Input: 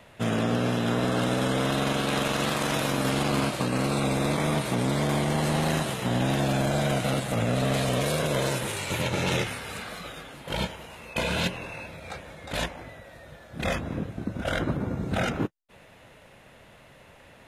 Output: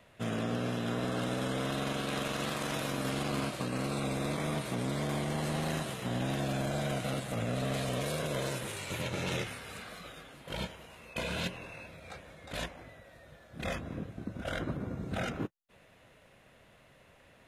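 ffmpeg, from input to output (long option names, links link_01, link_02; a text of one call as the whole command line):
ffmpeg -i in.wav -af "bandreject=frequency=870:width=13,volume=-8dB" out.wav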